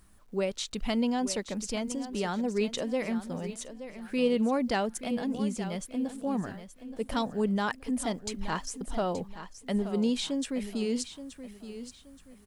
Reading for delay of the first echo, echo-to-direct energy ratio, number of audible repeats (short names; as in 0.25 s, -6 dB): 0.875 s, -11.5 dB, 3